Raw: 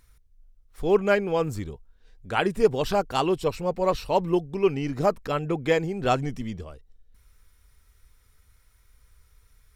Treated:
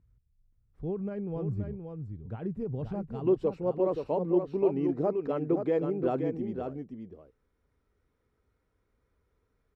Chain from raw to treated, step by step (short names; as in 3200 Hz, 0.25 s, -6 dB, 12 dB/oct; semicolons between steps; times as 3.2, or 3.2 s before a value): limiter -16 dBFS, peak gain reduction 9 dB; band-pass 120 Hz, Q 1.2, from 3.27 s 350 Hz; echo 0.525 s -6.5 dB; gain +1 dB